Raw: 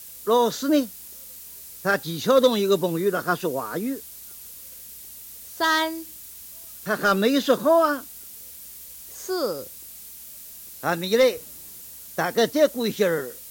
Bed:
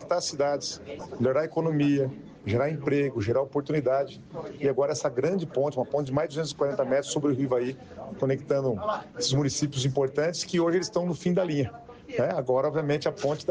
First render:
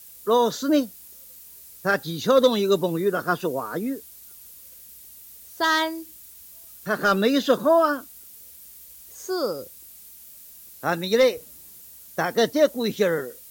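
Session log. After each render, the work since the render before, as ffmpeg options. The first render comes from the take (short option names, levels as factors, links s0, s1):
-af "afftdn=nr=6:nf=-42"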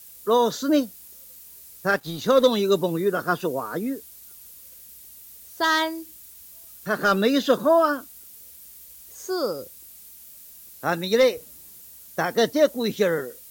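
-filter_complex "[0:a]asettb=1/sr,asplit=3[s0][s1][s2];[s0]atrim=end=1.954[s3];[s1]atrim=start=1.95:end=2.42,asetpts=PTS-STARTPTS,afade=t=in:d=0.004:c=qsin,afade=t=out:st=0.466:d=0.004:c=qsin,aeval=exprs='sgn(val(0))*max(abs(val(0))-0.0075,0)':c=same[s4];[s2]atrim=start=2.416[s5];[s3][s4]acrossfade=d=0.004:c1=hsin:c2=qsin[s6];[s6][s5]acrossfade=d=0.004:c1=qsin:c2=hsin"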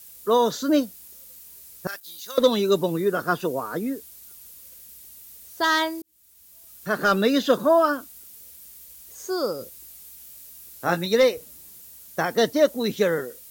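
-filter_complex "[0:a]asettb=1/sr,asplit=3[s0][s1][s2];[s0]atrim=end=1.874[s3];[s1]atrim=start=1.87:end=2.38,asetpts=PTS-STARTPTS,afade=t=in:d=0.004:c=qsin,afade=t=out:st=0.506:d=0.004:c=qsin,aderivative[s4];[s2]atrim=start=2.376[s5];[s3][s4]acrossfade=d=0.004:c1=hsin:c2=qsin[s6];[s6][s5]acrossfade=d=0.004:c1=qsin:c2=hsin,asettb=1/sr,asplit=3[s7][s8][s9];[s7]atrim=end=9.594[s10];[s8]atrim=start=9.59:end=11.06,asetpts=PTS-STARTPTS,afade=t=in:d=0.004:c=qsin,afade=t=out:st=1.466:d=0.004:c=qsin,asplit=2[s11][s12];[s12]adelay=17,volume=0.501[s13];[s11][s13]amix=inputs=2:normalize=0,atrim=end_sample=64827[s14];[s9]atrim=start=11.056[s15];[s10][s14]acrossfade=d=0.004:c1=hsin:c2=qsin[s16];[s16][s15]acrossfade=d=0.004:c1=qsin:c2=hsin,asplit=2[s17][s18];[s17]atrim=end=6.02,asetpts=PTS-STARTPTS,afade=t=out:st=6.016:d=0.004:c=hsin[s19];[s18]atrim=start=6.02,asetpts=PTS-STARTPTS,afade=t=in:d=0.88[s20];[s19][s20]concat=n=2:v=0:a=1"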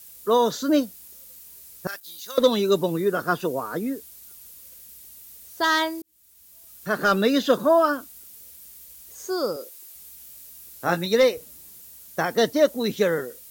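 -filter_complex "[0:a]asettb=1/sr,asplit=3[s0][s1][s2];[s0]atrim=end=9.564[s3];[s1]atrim=start=9.56:end=9.96,asetpts=PTS-STARTPTS,afade=t=in:d=0.004:c=qsin,afade=t=out:st=0.396:d=0.004:c=qsin,highpass=f=310:w=0.5412,highpass=f=310:w=1.3066[s4];[s2]atrim=start=9.956[s5];[s3][s4]acrossfade=d=0.004:c1=hsin:c2=qsin[s6];[s6][s5]acrossfade=d=0.004:c1=qsin:c2=hsin"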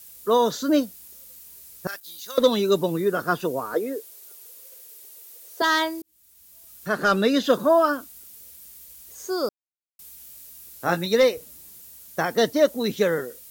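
-filter_complex "[0:a]asettb=1/sr,asplit=3[s0][s1][s2];[s0]atrim=end=3.744[s3];[s1]atrim=start=3.74:end=5.62,asetpts=PTS-STARTPTS,afade=t=in:d=0.004:c=qsin,afade=t=out:st=1.876:d=0.004:c=qsin,highpass=f=440:t=q:w=2.8[s4];[s2]atrim=start=5.616[s5];[s3][s4]acrossfade=d=0.004:c1=hsin:c2=qsin[s6];[s6][s5]acrossfade=d=0.004:c1=qsin:c2=hsin,asettb=1/sr,asplit=3[s7][s8][s9];[s7]atrim=end=6.884[s10];[s8]atrim=start=6.88:end=7.44,asetpts=PTS-STARTPTS,afade=t=in:d=0.004:c=qsin,afade=t=out:st=0.556:d=0.004:c=qsin,lowpass=12000[s11];[s9]atrim=start=7.436[s12];[s10][s11]acrossfade=d=0.004:c1=hsin:c2=qsin[s13];[s13][s12]acrossfade=d=0.004:c1=qsin:c2=hsin,asplit=3[s14][s15][s16];[s14]atrim=end=9.49,asetpts=PTS-STARTPTS,afade=t=out:st=9.486:d=0.004:c=hsin[s17];[s15]atrim=start=9.49:end=9.99,asetpts=PTS-STARTPTS,volume=0[s18];[s16]atrim=start=9.99,asetpts=PTS-STARTPTS,afade=t=in:d=0.004:c=hsin[s19];[s17][s18][s19]concat=n=3:v=0:a=1"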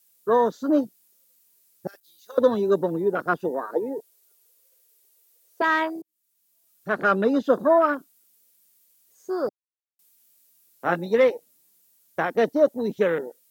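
-af "highpass=180,afwtdn=0.0398"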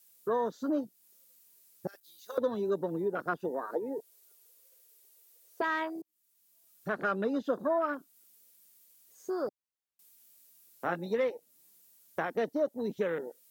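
-af "acompressor=threshold=0.0158:ratio=2"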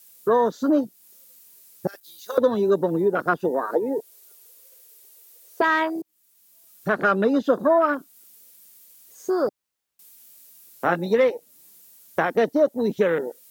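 -af "volume=3.55"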